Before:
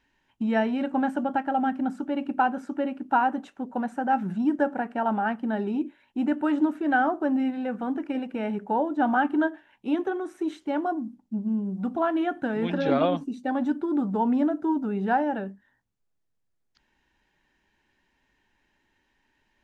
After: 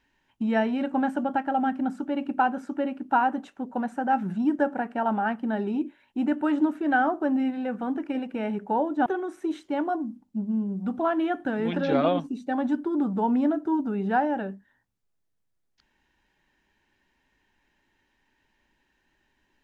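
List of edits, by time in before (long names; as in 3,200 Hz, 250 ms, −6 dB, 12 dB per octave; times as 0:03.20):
0:09.06–0:10.03: remove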